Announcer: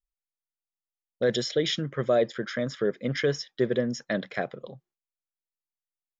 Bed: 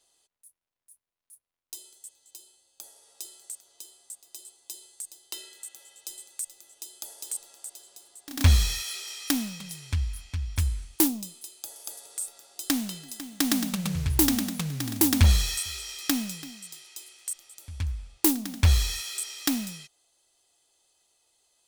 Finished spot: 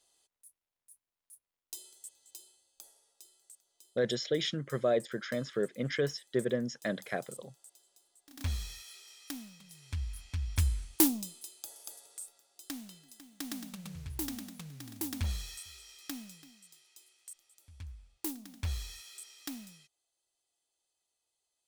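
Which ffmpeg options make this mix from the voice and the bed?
-filter_complex "[0:a]adelay=2750,volume=-5.5dB[a];[1:a]volume=10.5dB,afade=t=out:st=2.37:d=0.79:silence=0.223872,afade=t=in:st=9.68:d=0.87:silence=0.211349,afade=t=out:st=11.16:d=1.28:silence=0.223872[b];[a][b]amix=inputs=2:normalize=0"

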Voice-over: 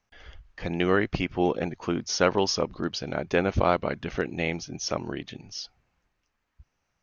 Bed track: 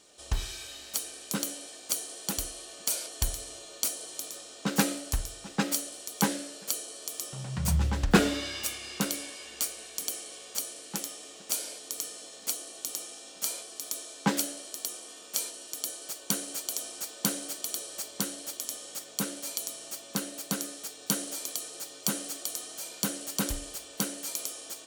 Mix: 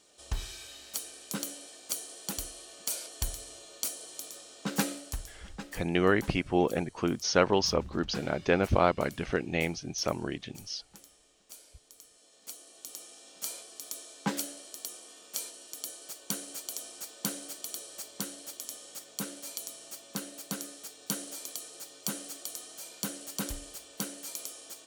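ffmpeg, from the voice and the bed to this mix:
-filter_complex "[0:a]adelay=5150,volume=-1.5dB[a];[1:a]volume=10dB,afade=t=out:st=4.8:d=0.96:silence=0.177828,afade=t=in:st=12.09:d=1.39:silence=0.199526[b];[a][b]amix=inputs=2:normalize=0"

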